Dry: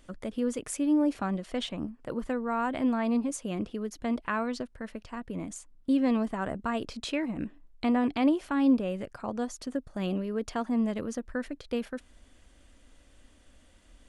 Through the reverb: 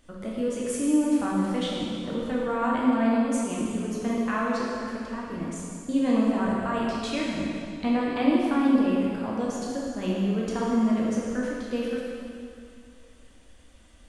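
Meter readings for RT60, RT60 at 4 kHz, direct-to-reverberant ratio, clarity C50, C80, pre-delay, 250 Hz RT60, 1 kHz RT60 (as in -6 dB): 2.4 s, 2.2 s, -5.0 dB, -2.0 dB, 0.0 dB, 6 ms, 2.5 s, 2.4 s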